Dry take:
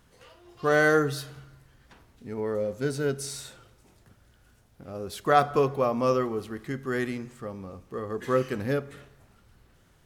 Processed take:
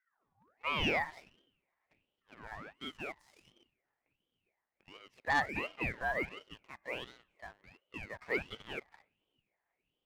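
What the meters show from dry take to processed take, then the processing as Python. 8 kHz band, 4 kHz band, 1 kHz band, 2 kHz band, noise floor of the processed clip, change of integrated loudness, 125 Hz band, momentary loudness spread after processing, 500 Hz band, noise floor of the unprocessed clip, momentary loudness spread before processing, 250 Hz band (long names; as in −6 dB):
−19.0 dB, −1.5 dB, −10.5 dB, −5.5 dB, below −85 dBFS, −9.5 dB, −15.5 dB, 21 LU, −17.5 dB, −61 dBFS, 17 LU, −14.5 dB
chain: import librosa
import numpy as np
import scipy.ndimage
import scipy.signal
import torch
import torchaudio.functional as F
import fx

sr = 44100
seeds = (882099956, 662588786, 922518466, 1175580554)

y = fx.filter_sweep_bandpass(x, sr, from_hz=250.0, to_hz=1300.0, start_s=0.27, end_s=0.87, q=4.7)
y = fx.leveller(y, sr, passes=2)
y = fx.ring_lfo(y, sr, carrier_hz=1100.0, swing_pct=60, hz=1.4)
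y = y * librosa.db_to_amplitude(-4.0)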